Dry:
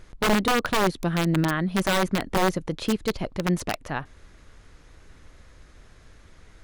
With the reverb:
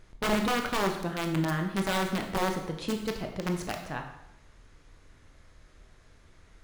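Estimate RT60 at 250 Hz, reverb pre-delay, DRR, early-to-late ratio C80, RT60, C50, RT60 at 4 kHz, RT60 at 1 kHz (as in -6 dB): 0.75 s, 16 ms, 3.5 dB, 9.0 dB, 0.80 s, 7.0 dB, 0.75 s, 0.80 s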